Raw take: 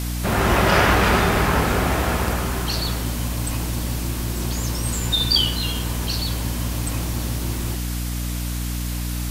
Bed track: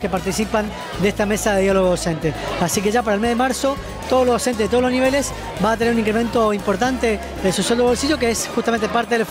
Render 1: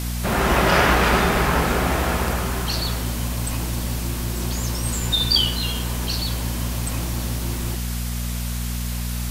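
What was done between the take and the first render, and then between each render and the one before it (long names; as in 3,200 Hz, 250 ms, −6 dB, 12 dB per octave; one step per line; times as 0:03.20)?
hum removal 50 Hz, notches 9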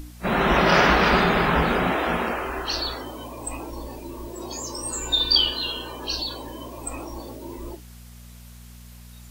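noise reduction from a noise print 18 dB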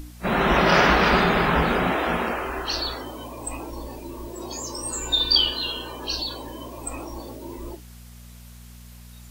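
no processing that can be heard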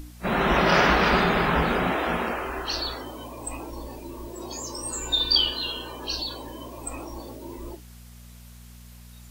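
level −2 dB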